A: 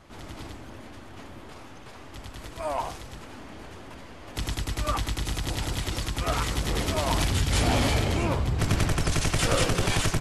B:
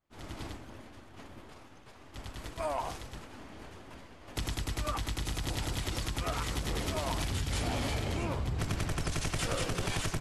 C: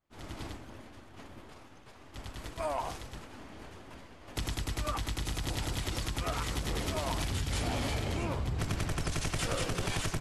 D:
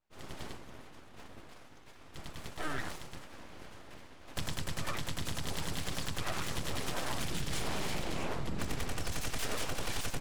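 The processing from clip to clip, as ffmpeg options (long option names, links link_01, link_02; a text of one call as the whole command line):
ffmpeg -i in.wav -af "acompressor=threshold=-30dB:ratio=6,agate=range=-33dB:threshold=-36dB:ratio=3:detection=peak" out.wav
ffmpeg -i in.wav -af anull out.wav
ffmpeg -i in.wav -af "aeval=exprs='abs(val(0))':channel_layout=same" out.wav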